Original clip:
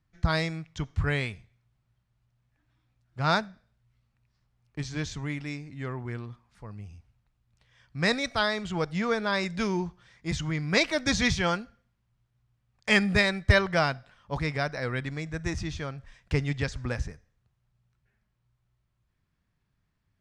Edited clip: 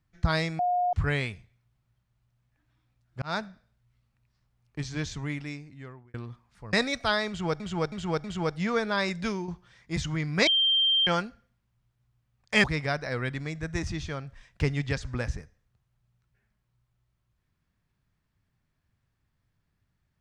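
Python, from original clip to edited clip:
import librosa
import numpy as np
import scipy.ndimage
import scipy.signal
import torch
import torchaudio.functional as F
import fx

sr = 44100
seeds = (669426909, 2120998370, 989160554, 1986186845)

y = fx.edit(x, sr, fx.bleep(start_s=0.59, length_s=0.34, hz=716.0, db=-22.5),
    fx.fade_in_span(start_s=3.22, length_s=0.25),
    fx.fade_out_span(start_s=5.36, length_s=0.78),
    fx.cut(start_s=6.73, length_s=1.31),
    fx.repeat(start_s=8.59, length_s=0.32, count=4),
    fx.fade_out_to(start_s=9.55, length_s=0.28, floor_db=-9.0),
    fx.bleep(start_s=10.82, length_s=0.6, hz=3160.0, db=-20.0),
    fx.cut(start_s=12.99, length_s=1.36), tone=tone)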